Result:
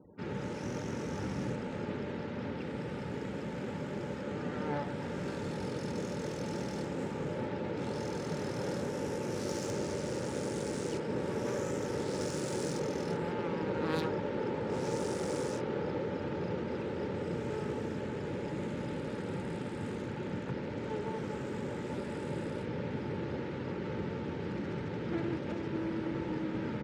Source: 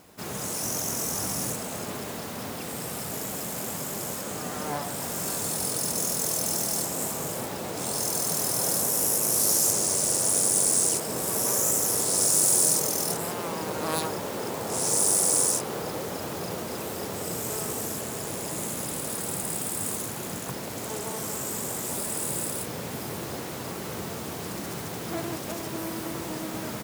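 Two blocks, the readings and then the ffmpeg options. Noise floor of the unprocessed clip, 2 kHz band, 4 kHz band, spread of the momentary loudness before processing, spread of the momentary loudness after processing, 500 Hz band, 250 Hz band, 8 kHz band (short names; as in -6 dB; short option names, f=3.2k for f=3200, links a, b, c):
-35 dBFS, -5.0 dB, -14.0 dB, 14 LU, 4 LU, -1.5 dB, 0.0 dB, -26.5 dB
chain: -filter_complex "[0:a]aemphasis=mode=reproduction:type=50kf,afftfilt=real='re*gte(hypot(re,im),0.00282)':imag='im*gte(hypot(re,im),0.00282)':win_size=1024:overlap=0.75,highshelf=f=7.7k:g=-5,acrossover=split=100|930[a][b][c];[b]asuperstop=centerf=710:order=20:qfactor=3.1[d];[c]adynamicsmooth=sensitivity=3.5:basefreq=2.6k[e];[a][d][e]amix=inputs=3:normalize=0"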